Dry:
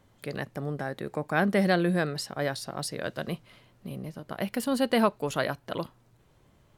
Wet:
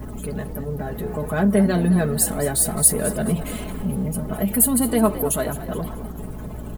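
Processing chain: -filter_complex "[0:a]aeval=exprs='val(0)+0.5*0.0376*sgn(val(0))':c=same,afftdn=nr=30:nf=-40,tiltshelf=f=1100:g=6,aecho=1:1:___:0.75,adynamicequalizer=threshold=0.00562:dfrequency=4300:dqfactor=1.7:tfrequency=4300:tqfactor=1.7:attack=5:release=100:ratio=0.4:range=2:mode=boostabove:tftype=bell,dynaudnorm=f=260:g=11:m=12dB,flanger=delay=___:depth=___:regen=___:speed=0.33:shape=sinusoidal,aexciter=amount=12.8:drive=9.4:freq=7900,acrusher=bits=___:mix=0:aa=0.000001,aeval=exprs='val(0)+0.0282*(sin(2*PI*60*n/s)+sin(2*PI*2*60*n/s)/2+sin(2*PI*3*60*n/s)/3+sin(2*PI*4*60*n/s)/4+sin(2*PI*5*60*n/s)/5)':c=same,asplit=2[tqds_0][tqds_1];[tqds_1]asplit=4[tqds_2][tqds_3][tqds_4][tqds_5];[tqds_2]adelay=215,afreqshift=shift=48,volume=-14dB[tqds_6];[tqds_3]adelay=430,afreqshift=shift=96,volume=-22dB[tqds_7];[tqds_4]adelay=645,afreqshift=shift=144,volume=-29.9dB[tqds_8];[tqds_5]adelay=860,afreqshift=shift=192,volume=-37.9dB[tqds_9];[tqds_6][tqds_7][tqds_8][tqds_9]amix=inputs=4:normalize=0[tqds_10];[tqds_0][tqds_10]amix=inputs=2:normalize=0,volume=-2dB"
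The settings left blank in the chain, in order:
4.7, 0.1, 8.3, -71, 8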